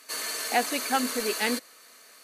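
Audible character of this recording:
background noise floor −53 dBFS
spectral slope −1.5 dB per octave

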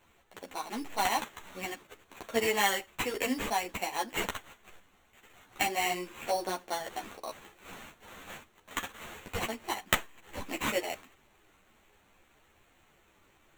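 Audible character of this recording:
aliases and images of a low sample rate 5,000 Hz, jitter 0%
a shimmering, thickened sound

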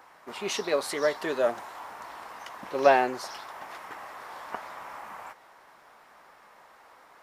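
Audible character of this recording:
background noise floor −56 dBFS
spectral slope −2.5 dB per octave

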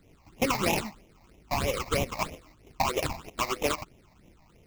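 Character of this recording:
aliases and images of a low sample rate 1,700 Hz, jitter 20%
phaser sweep stages 8, 3.1 Hz, lowest notch 410–1,400 Hz

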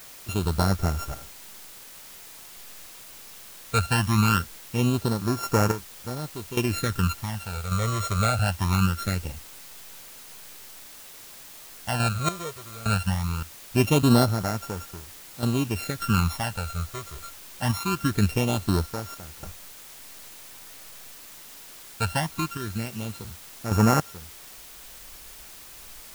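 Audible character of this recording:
a buzz of ramps at a fixed pitch in blocks of 32 samples
sample-and-hold tremolo, depth 90%
phaser sweep stages 12, 0.22 Hz, lowest notch 270–3,500 Hz
a quantiser's noise floor 8 bits, dither triangular

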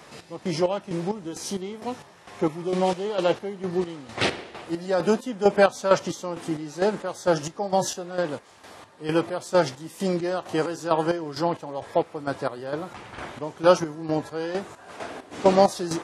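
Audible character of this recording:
chopped level 2.2 Hz, depth 65%, duty 45%

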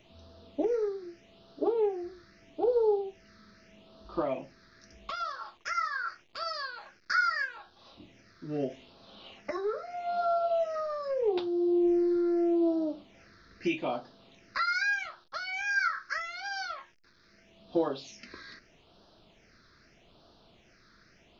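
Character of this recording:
phaser sweep stages 6, 0.8 Hz, lowest notch 750–2,100 Hz

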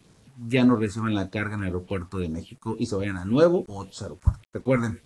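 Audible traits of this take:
phaser sweep stages 4, 1.8 Hz, lowest notch 440–2,700 Hz
a quantiser's noise floor 10 bits, dither none
AAC

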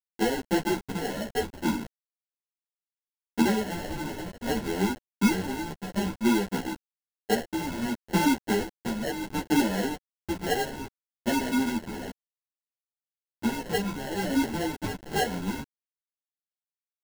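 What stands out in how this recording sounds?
a quantiser's noise floor 6 bits, dither none
phaser sweep stages 8, 0.64 Hz, lowest notch 370–1,400 Hz
aliases and images of a low sample rate 1,200 Hz, jitter 0%
a shimmering, thickened sound

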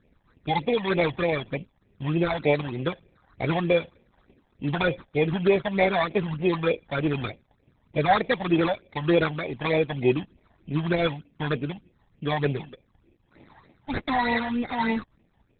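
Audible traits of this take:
aliases and images of a low sample rate 2,900 Hz, jitter 0%
tremolo triangle 2.1 Hz, depth 30%
phaser sweep stages 12, 3.3 Hz, lowest notch 390–1,400 Hz
Opus

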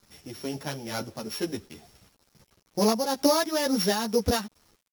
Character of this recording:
a buzz of ramps at a fixed pitch in blocks of 8 samples
tremolo triangle 2.2 Hz, depth 50%
a quantiser's noise floor 10 bits, dither none
a shimmering, thickened sound

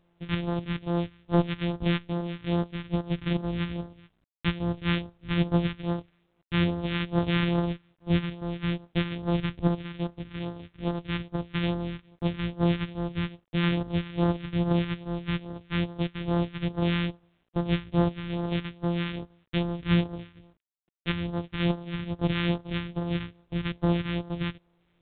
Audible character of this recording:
a buzz of ramps at a fixed pitch in blocks of 256 samples
phaser sweep stages 2, 2.4 Hz, lowest notch 610–2,300 Hz
a quantiser's noise floor 12 bits, dither none
mu-law

